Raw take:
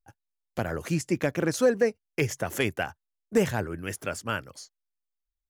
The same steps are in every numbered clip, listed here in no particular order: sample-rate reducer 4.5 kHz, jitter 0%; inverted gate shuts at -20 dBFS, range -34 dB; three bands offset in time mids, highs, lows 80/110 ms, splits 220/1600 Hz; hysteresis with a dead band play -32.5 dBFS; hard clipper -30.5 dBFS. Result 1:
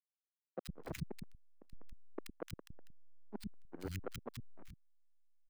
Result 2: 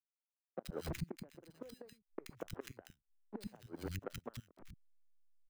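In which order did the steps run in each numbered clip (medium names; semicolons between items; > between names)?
sample-rate reducer > inverted gate > hysteresis with a dead band > hard clipper > three bands offset in time; sample-rate reducer > hysteresis with a dead band > inverted gate > hard clipper > three bands offset in time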